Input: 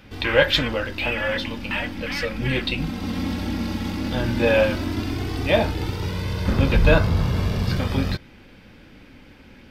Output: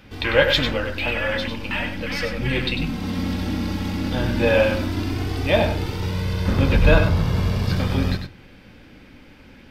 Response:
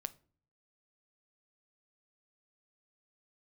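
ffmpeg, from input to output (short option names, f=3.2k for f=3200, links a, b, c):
-filter_complex "[0:a]asplit=2[a][b];[1:a]atrim=start_sample=2205,adelay=98[c];[b][c]afir=irnorm=-1:irlink=0,volume=-5dB[d];[a][d]amix=inputs=2:normalize=0"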